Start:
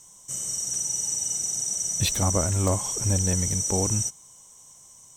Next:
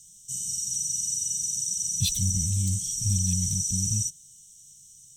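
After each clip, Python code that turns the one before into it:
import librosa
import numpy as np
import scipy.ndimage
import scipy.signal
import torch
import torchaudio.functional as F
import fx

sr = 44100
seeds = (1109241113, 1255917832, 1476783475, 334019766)

y = scipy.signal.sosfilt(scipy.signal.cheby1(3, 1.0, [180.0, 3300.0], 'bandstop', fs=sr, output='sos'), x)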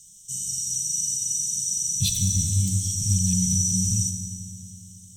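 y = fx.rev_fdn(x, sr, rt60_s=3.3, lf_ratio=1.0, hf_ratio=0.65, size_ms=12.0, drr_db=3.5)
y = y * librosa.db_to_amplitude(1.5)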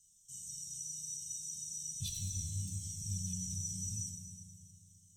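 y = fx.comb_fb(x, sr, f0_hz=78.0, decay_s=1.7, harmonics='all', damping=0.0, mix_pct=80)
y = fx.comb_cascade(y, sr, direction='falling', hz=0.79)
y = y * librosa.db_to_amplitude(-1.0)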